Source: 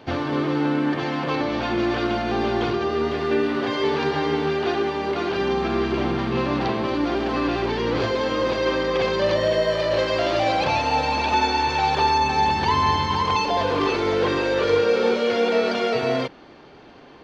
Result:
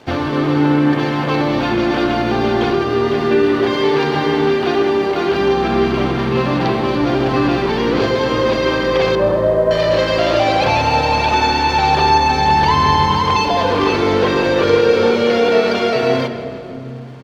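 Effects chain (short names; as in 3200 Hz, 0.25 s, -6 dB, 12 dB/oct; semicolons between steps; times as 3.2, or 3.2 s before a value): 9.15–9.71 LPF 1300 Hz 24 dB/oct; crossover distortion -52 dBFS; frequency-shifting echo 0.161 s, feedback 58%, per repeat -30 Hz, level -17 dB; on a send at -10 dB: reverb RT60 3.4 s, pre-delay 98 ms; on the sum: gain +6 dB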